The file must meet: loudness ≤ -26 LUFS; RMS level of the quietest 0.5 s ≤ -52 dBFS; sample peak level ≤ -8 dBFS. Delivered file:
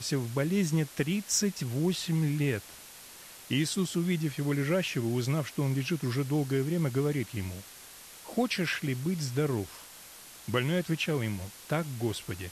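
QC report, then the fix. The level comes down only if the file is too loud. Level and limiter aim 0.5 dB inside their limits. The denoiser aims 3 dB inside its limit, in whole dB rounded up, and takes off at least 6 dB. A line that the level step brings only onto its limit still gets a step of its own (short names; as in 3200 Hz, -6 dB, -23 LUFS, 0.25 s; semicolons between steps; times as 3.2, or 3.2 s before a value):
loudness -30.5 LUFS: OK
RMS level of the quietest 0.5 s -49 dBFS: fail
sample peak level -14.5 dBFS: OK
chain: denoiser 6 dB, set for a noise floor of -49 dBFS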